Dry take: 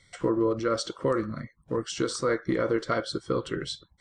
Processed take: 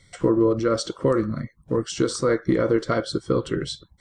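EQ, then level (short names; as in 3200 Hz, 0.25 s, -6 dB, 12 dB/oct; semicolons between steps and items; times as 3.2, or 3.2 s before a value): tilt shelf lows +4 dB, about 640 Hz; high shelf 4500 Hz +5.5 dB; +4.0 dB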